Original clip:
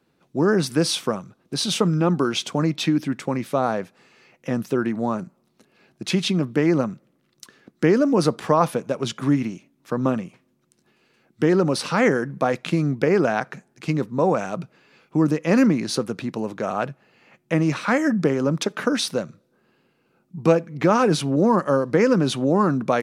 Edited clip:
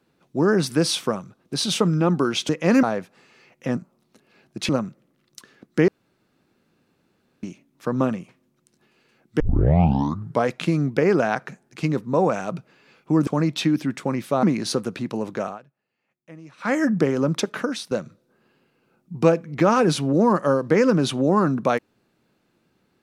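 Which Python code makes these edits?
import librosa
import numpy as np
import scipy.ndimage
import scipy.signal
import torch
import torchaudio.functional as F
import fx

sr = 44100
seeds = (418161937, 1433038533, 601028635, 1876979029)

y = fx.edit(x, sr, fx.swap(start_s=2.49, length_s=1.16, other_s=15.32, other_length_s=0.34),
    fx.cut(start_s=4.59, length_s=0.63),
    fx.cut(start_s=6.14, length_s=0.6),
    fx.room_tone_fill(start_s=7.93, length_s=1.55),
    fx.tape_start(start_s=11.45, length_s=1.08),
    fx.fade_down_up(start_s=16.63, length_s=1.36, db=-22.5, fade_s=0.19),
    fx.fade_out_to(start_s=18.69, length_s=0.45, floor_db=-15.5), tone=tone)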